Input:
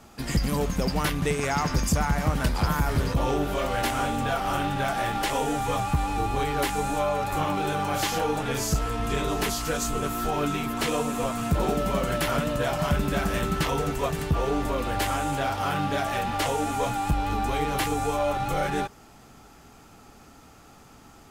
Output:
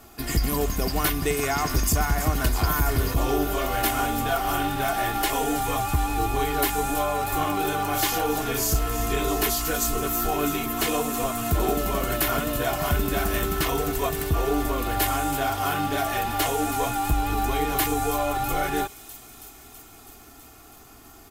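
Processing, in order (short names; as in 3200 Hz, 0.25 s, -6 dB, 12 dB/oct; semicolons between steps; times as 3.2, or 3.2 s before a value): bell 14000 Hz +13.5 dB 0.6 oct; comb 2.8 ms, depth 55%; on a send: thin delay 0.326 s, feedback 75%, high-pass 4500 Hz, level -10 dB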